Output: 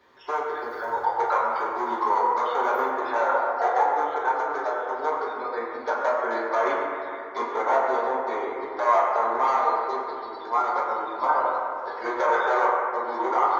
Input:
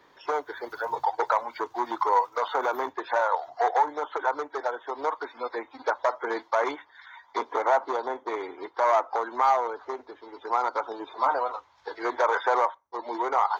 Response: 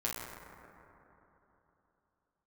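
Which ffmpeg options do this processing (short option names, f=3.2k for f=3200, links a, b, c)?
-filter_complex "[0:a]asettb=1/sr,asplit=3[a][b][c];[a]atrim=end=9.574[d];[b]atrim=start=9.57:end=10.46,asetpts=PTS-STARTPTS,afade=t=in:d=0.004:c=qsin,afade=t=out:st=0.886:d=0.004:c=qsin,equalizer=f=4.2k:w=3.1:g=14[e];[c]atrim=start=10.456[f];[d][e]acrossfade=d=0.004:c1=hsin:c2=qsin[g];[g][f]acrossfade=d=0.004:c1=qsin:c2=hsin[h];[1:a]atrim=start_sample=2205,asetrate=57330,aresample=44100[i];[h][i]afir=irnorm=-1:irlink=0"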